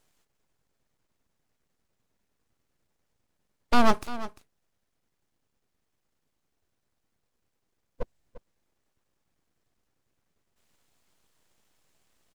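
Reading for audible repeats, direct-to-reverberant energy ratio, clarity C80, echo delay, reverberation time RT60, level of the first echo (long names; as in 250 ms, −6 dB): 1, no reverb audible, no reverb audible, 347 ms, no reverb audible, −15.0 dB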